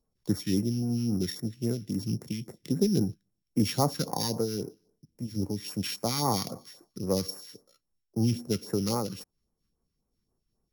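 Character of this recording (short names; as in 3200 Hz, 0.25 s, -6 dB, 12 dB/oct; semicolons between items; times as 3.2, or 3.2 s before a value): a buzz of ramps at a fixed pitch in blocks of 8 samples; phasing stages 2, 3.7 Hz, lowest notch 630–3200 Hz; noise-modulated level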